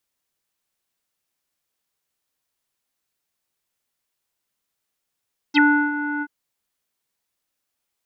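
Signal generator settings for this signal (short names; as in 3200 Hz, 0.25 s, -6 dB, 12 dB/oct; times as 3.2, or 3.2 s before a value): synth note square D4 24 dB/oct, low-pass 1600 Hz, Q 11, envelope 2 oct, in 0.05 s, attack 34 ms, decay 0.34 s, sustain -12 dB, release 0.05 s, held 0.68 s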